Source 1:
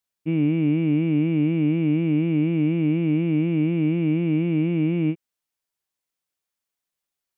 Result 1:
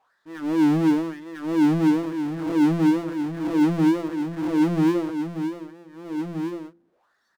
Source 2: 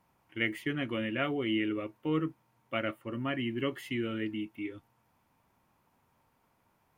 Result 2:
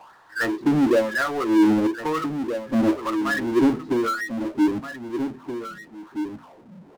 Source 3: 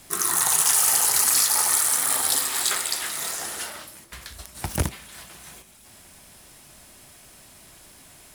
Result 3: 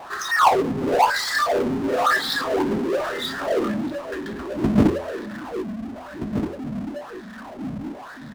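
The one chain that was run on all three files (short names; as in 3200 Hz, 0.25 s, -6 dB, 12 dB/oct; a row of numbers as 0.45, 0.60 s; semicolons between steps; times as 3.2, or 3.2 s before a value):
wah 1 Hz 210–2400 Hz, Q 3.6; elliptic band-stop 1800–3600 Hz; tone controls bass -4 dB, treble -2 dB; spectral noise reduction 20 dB; tape spacing loss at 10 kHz 33 dB; outdoor echo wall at 270 m, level -17 dB; power-law curve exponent 0.5; de-hum 85 Hz, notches 6; match loudness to -23 LUFS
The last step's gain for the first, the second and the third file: +7.0, +19.0, +19.5 dB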